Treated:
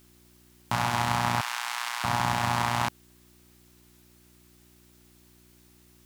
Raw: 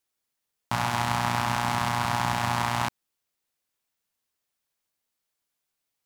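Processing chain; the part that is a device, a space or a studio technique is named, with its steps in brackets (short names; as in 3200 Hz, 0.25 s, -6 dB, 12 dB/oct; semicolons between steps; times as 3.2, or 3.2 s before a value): video cassette with head-switching buzz (buzz 60 Hz, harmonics 6, -60 dBFS -2 dB/oct; white noise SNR 31 dB); 1.41–2.04 HPF 1500 Hz 12 dB/oct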